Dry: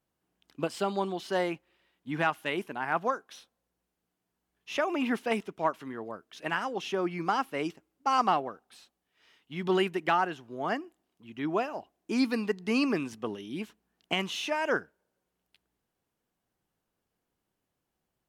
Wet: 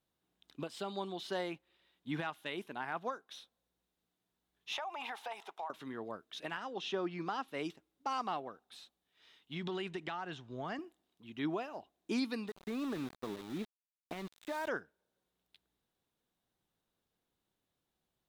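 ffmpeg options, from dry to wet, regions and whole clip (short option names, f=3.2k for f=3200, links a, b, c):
-filter_complex "[0:a]asettb=1/sr,asplit=3[a][b][c];[a]atrim=end=4.734[d];[b]atrim=start=4.73:end=5.7,asetpts=PTS-STARTPTS,afade=t=in:d=0.004:c=qsin,afade=t=out:st=0.966:d=0.004:c=qsin,highpass=f=820:t=q:w=5.8,acompressor=threshold=-35dB:ratio=8:attack=3.2:release=140:knee=1:detection=peak[e];[c]atrim=start=5.696[f];[d][e]acrossfade=d=0.004:c1=hsin:c2=qsin[g];[g][f]acrossfade=d=0.004:c1=qsin:c2=hsin,asettb=1/sr,asplit=3[h][i][j];[h]atrim=end=6.574[k];[i]atrim=start=6.57:end=7.48,asetpts=PTS-STARTPTS,afade=t=in:d=0.004:c=qsin,afade=t=out:st=0.906:d=0.004:c=qsin,highpass=130,lowpass=6.4k,bandreject=f=2.2k:w=12[l];[j]atrim=start=7.476[m];[k][l]acrossfade=d=0.004:c1=hsin:c2=qsin[n];[n][m]acrossfade=d=0.004:c1=qsin:c2=hsin,asettb=1/sr,asplit=3[o][p][q];[o]atrim=end=9.554[r];[p]atrim=start=9.55:end=10.79,asetpts=PTS-STARTPTS,afade=t=in:d=0.004:c=qsin,afade=t=out:st=1.236:d=0.004:c=qsin,lowpass=f=8.4k:w=0.5412,lowpass=f=8.4k:w=1.3066,asubboost=boost=8.5:cutoff=160,acompressor=threshold=-32dB:ratio=6:attack=3.2:release=140:knee=1:detection=peak[s];[q]atrim=start=10.786[t];[r][s]acrossfade=d=0.004:c1=hsin:c2=qsin[u];[u][t]acrossfade=d=0.004:c1=qsin:c2=hsin,asettb=1/sr,asplit=3[v][w][x];[v]atrim=end=12.484[y];[w]atrim=start=12.48:end=14.68,asetpts=PTS-STARTPTS,afade=t=in:d=0.004:c=qsin,afade=t=out:st=2.196:d=0.004:c=qsin,lowpass=f=1.9k:w=0.5412,lowpass=f=1.9k:w=1.3066,acompressor=threshold=-30dB:ratio=16:attack=3.2:release=140:knee=1:detection=peak,aeval=exprs='val(0)*gte(abs(val(0)),0.00841)':c=same[z];[x]atrim=start=14.676[aa];[y][z]acrossfade=d=0.004:c1=hsin:c2=qsin[ab];[ab][aa]acrossfade=d=0.004:c1=qsin:c2=hsin,equalizer=f=3.7k:t=o:w=0.31:g=10,alimiter=limit=-23dB:level=0:latency=1:release=499,volume=-3.5dB"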